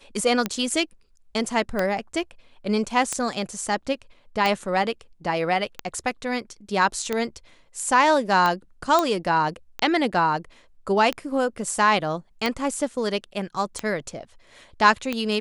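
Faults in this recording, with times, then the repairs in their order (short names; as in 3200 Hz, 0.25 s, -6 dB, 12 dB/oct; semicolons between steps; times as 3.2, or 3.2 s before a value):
tick 45 rpm -10 dBFS
8.99 pop -7 dBFS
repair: de-click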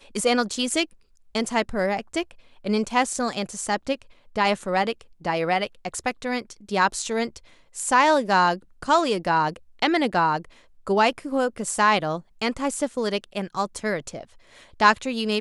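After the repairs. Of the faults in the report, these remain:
none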